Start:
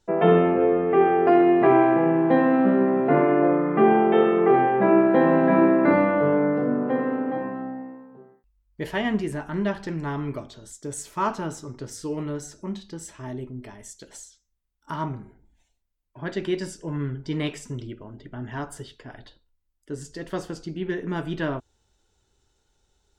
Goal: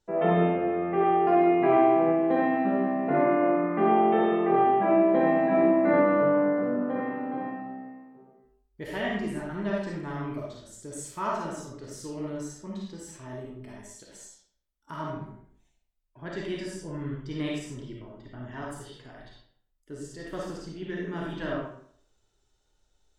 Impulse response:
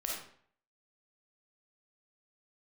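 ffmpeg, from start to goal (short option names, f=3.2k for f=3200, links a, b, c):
-filter_complex "[0:a]asettb=1/sr,asplit=3[a][b][c];[a]atrim=end=5.584[d];[b]atrim=start=5.58:end=6.74,asetpts=PTS-STARTPTS,afade=t=in:d=0.004:c=qsin,afade=t=out:st=1.156:d=0.004:c=qsin,highshelf=f=6.8k:g=-12[e];[c]atrim=start=6.736[f];[d][e]acrossfade=d=0.004:c1=hsin:c2=qsin[g];[g][f]acrossfade=d=0.004:c1=qsin:c2=hsin[h];[1:a]atrim=start_sample=2205,asetrate=42336,aresample=44100[i];[h][i]afir=irnorm=-1:irlink=0,volume=-6.5dB"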